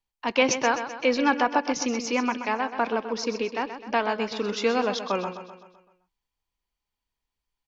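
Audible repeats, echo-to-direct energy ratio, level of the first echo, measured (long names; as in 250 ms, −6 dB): 5, −8.5 dB, −10.0 dB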